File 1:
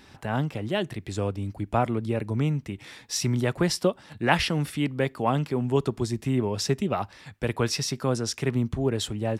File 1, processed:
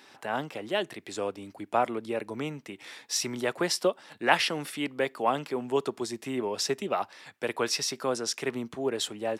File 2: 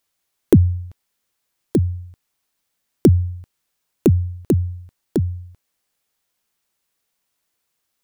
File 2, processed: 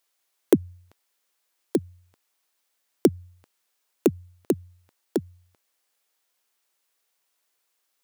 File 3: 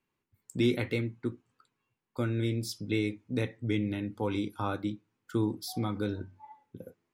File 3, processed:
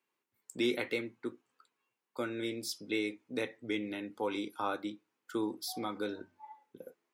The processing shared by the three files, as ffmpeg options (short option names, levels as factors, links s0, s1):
-af "highpass=370"